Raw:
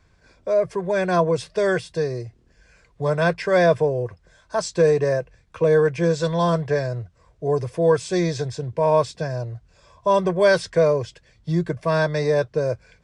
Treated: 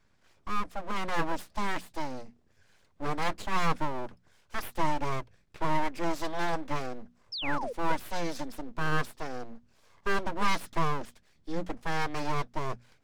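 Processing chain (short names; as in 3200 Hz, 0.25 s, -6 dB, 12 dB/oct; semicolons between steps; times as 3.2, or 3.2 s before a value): full-wave rectifier; painted sound fall, 7.32–7.73, 440–5600 Hz -28 dBFS; notches 60/120/180/240 Hz; gain -7.5 dB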